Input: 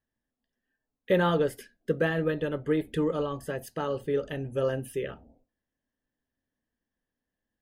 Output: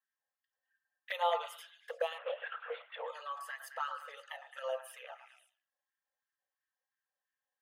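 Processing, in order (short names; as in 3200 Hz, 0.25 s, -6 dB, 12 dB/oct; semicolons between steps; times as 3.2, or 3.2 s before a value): envelope flanger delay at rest 3.8 ms, full sweep at -23 dBFS; LFO high-pass sine 2.9 Hz 660–1600 Hz; delay with a stepping band-pass 0.108 s, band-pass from 1200 Hz, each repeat 0.7 oct, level -6 dB; 2.18–3.08 LPC vocoder at 8 kHz whisper; brick-wall FIR high-pass 450 Hz; gain -3.5 dB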